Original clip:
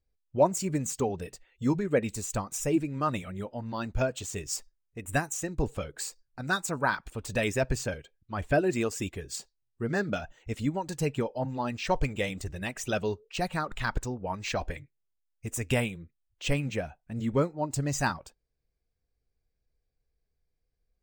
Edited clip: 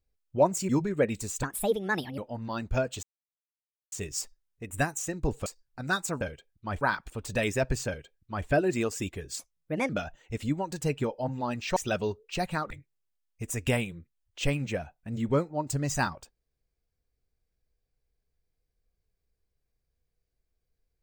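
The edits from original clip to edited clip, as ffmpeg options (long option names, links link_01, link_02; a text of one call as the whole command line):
ffmpeg -i in.wav -filter_complex "[0:a]asplit=12[link_01][link_02][link_03][link_04][link_05][link_06][link_07][link_08][link_09][link_10][link_11][link_12];[link_01]atrim=end=0.692[link_13];[link_02]atrim=start=1.628:end=2.374[link_14];[link_03]atrim=start=2.37:end=3.42,asetpts=PTS-STARTPTS,asetrate=61740,aresample=44100[link_15];[link_04]atrim=start=3.416:end=4.27,asetpts=PTS-STARTPTS,afade=type=out:start_time=0.85:duration=0.004:curve=hsin,apad=pad_dur=0.89[link_16];[link_05]atrim=start=4.27:end=5.812,asetpts=PTS-STARTPTS,afade=type=in:duration=0.004:curve=hsin[link_17];[link_06]atrim=start=6.058:end=6.812[link_18];[link_07]atrim=start=7.868:end=8.472[link_19];[link_08]atrim=start=6.808:end=9.394[link_20];[link_09]atrim=start=9.39:end=10.06,asetpts=PTS-STARTPTS,asetrate=58653,aresample=44100[link_21];[link_10]atrim=start=10.056:end=11.932[link_22];[link_11]atrim=start=12.778:end=13.732[link_23];[link_12]atrim=start=14.748[link_24];[link_13][link_14]acrossfade=duration=0.004:curve1=hsin:curve2=hsin[link_25];[link_25][link_15]acrossfade=duration=0.004:curve1=hsin:curve2=hsin[link_26];[link_16][link_17]concat=n=2:v=0:a=1[link_27];[link_26][link_27]acrossfade=duration=0.004:curve1=hsin:curve2=hsin[link_28];[link_28][link_18]acrossfade=duration=0.004:curve1=hsin:curve2=hsin[link_29];[link_29][link_19]acrossfade=duration=0.004:curve1=hsin:curve2=hsin[link_30];[link_30][link_20]acrossfade=duration=0.004:curve1=hsin:curve2=hsin[link_31];[link_31][link_21]acrossfade=duration=0.004:curve1=hsin:curve2=hsin[link_32];[link_32][link_22]acrossfade=duration=0.004:curve1=hsin:curve2=hsin[link_33];[link_33][link_23]acrossfade=duration=0.004:curve1=hsin:curve2=hsin[link_34];[link_34][link_24]acrossfade=duration=0.004:curve1=hsin:curve2=hsin" out.wav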